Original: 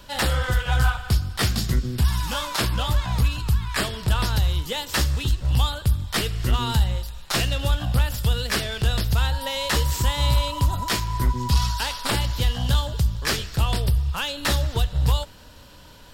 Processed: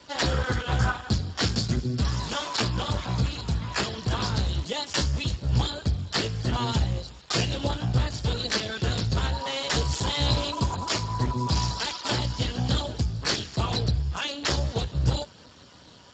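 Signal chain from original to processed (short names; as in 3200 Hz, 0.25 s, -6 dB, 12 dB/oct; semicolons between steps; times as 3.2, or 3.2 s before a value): 9.83–10.85 bell 2700 Hz -> 8400 Hz +3.5 dB 0.77 oct; Speex 8 kbps 16000 Hz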